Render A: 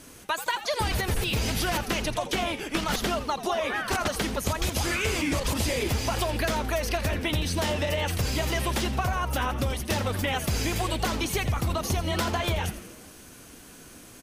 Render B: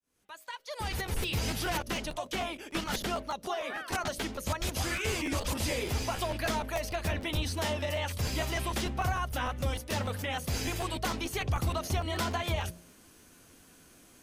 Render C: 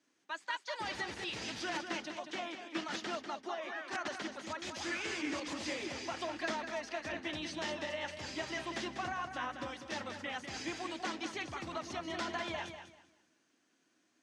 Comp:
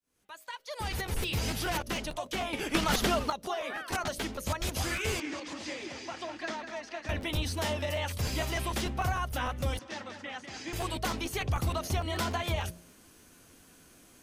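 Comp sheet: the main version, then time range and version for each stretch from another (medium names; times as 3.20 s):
B
2.53–3.30 s: from A
5.20–7.09 s: from C
9.79–10.73 s: from C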